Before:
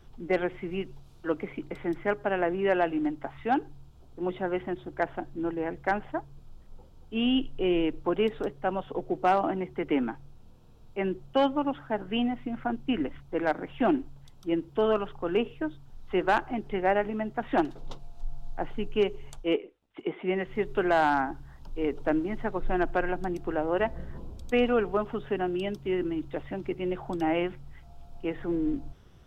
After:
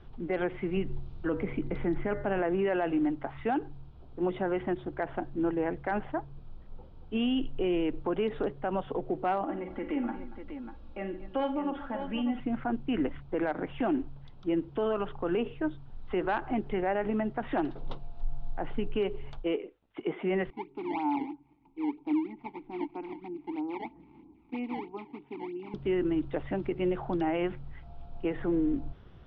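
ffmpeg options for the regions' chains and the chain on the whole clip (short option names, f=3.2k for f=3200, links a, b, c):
-filter_complex "[0:a]asettb=1/sr,asplit=3[a][b][c];[a]atrim=end=0.774[d];[b]atrim=start=0.77:end=2.39,asetpts=PTS-STARTPTS,afade=t=in:d=0.004:c=qsin,afade=t=out:st=1.616:d=0.004:c=qsin,lowshelf=f=200:g=10.5,bandreject=f=120.6:t=h:w=4,bandreject=f=241.2:t=h:w=4,bandreject=f=361.8:t=h:w=4,bandreject=f=482.4:t=h:w=4,bandreject=f=603:t=h:w=4,bandreject=f=723.6:t=h:w=4,bandreject=f=844.2:t=h:w=4,bandreject=f=964.8:t=h:w=4,bandreject=f=1.0854k:t=h:w=4,bandreject=f=1.206k:t=h:w=4,bandreject=f=1.3266k:t=h:w=4,bandreject=f=1.4472k:t=h:w=4,bandreject=f=1.5678k:t=h:w=4,bandreject=f=1.6884k:t=h:w=4,bandreject=f=1.809k:t=h:w=4,bandreject=f=1.9296k:t=h:w=4,bandreject=f=2.0502k:t=h:w=4[e];[c]atrim=start=2.386[f];[d][e]acrossfade=d=0.004:c1=hsin:c2=qsin[g];[g][f]acrossfade=d=0.004:c1=qsin:c2=hsin,asettb=1/sr,asplit=3[h][i][j];[h]atrim=end=9.444[k];[i]atrim=start=9.44:end=12.4,asetpts=PTS-STARTPTS,afade=t=in:d=0.004:c=qsin,afade=t=out:st=2.956:d=0.004:c=qsin,acompressor=threshold=-40dB:ratio=2.5:attack=3.2:release=140:knee=1:detection=peak,aecho=1:1:3.6:0.73,atrim=end_sample=130536,aecho=1:1:45|82|141|235|595:0.335|0.15|0.112|0.158|0.335,atrim=end_sample=130536[l];[j]atrim=start=12.396[m];[k][l]acrossfade=d=0.004:c1=hsin:c2=qsin[n];[n][m]acrossfade=d=0.004:c1=qsin:c2=hsin,asettb=1/sr,asplit=3[o][p][q];[o]atrim=end=20.504[r];[p]atrim=start=20.5:end=25.74,asetpts=PTS-STARTPTS,afade=t=in:d=0.004:c=qsin,afade=t=out:st=5.236:d=0.004:c=qsin,acrusher=samples=20:mix=1:aa=0.000001:lfo=1:lforange=32:lforate=3.1,asplit=3[s][t][u];[s]bandpass=f=300:t=q:w=8,volume=0dB[v];[t]bandpass=f=870:t=q:w=8,volume=-6dB[w];[u]bandpass=f=2.24k:t=q:w=8,volume=-9dB[x];[v][w][x]amix=inputs=3:normalize=0[y];[q]atrim=start=25.736[z];[r][y]acrossfade=d=0.004:c1=hsin:c2=qsin[aa];[aa][z]acrossfade=d=0.004:c1=qsin:c2=hsin,alimiter=limit=-24dB:level=0:latency=1:release=56,lowpass=f=4.3k:w=0.5412,lowpass=f=4.3k:w=1.3066,aemphasis=mode=reproduction:type=50fm,volume=2.5dB"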